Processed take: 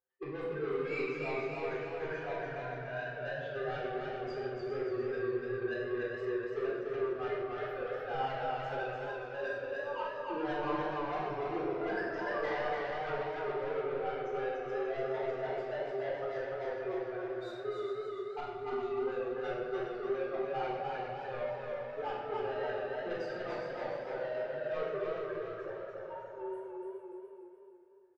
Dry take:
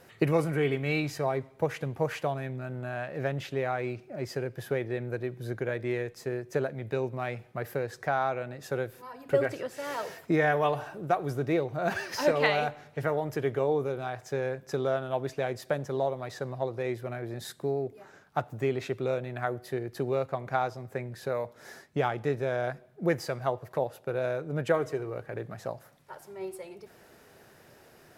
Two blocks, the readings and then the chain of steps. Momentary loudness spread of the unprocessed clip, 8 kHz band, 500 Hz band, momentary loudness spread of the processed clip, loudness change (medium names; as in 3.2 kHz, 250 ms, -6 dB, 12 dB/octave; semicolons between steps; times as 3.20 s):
10 LU, under -20 dB, -4.5 dB, 5 LU, -5.5 dB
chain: expander on every frequency bin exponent 2; spectral noise reduction 8 dB; spectral selection erased 9.67–10.45 s, 1.3–8.1 kHz; high-pass 260 Hz 6 dB/octave; high-order bell 810 Hz +14.5 dB 2.6 oct; reverse; compression 5:1, threshold -31 dBFS, peak gain reduction 20 dB; reverse; saturation -36.5 dBFS, distortion -8 dB; distance through air 200 m; on a send: feedback delay 413 ms, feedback 25%, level -8 dB; on the sum: simulated room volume 1000 m³, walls mixed, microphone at 3.8 m; modulated delay 292 ms, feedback 48%, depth 65 cents, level -3 dB; trim -4 dB